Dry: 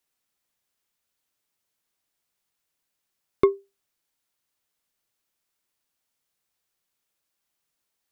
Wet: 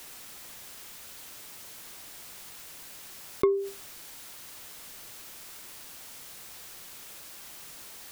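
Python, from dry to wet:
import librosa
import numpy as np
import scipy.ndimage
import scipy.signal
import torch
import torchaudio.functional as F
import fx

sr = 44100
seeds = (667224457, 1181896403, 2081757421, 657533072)

y = fx.env_flatten(x, sr, amount_pct=70)
y = y * librosa.db_to_amplitude(-5.5)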